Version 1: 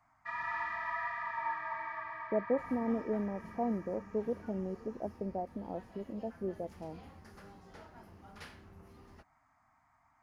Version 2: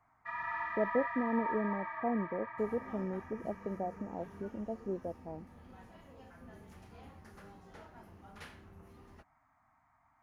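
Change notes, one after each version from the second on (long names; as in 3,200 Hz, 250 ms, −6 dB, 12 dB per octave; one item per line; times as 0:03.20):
speech: entry −1.55 s
first sound: add high-shelf EQ 4,300 Hz −9 dB
master: add parametric band 4,900 Hz −5.5 dB 0.36 octaves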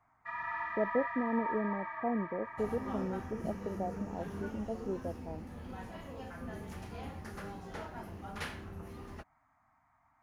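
second sound +10.0 dB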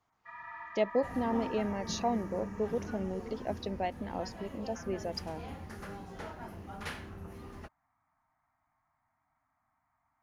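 speech: remove Gaussian smoothing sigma 10 samples
first sound −7.5 dB
second sound: entry −1.55 s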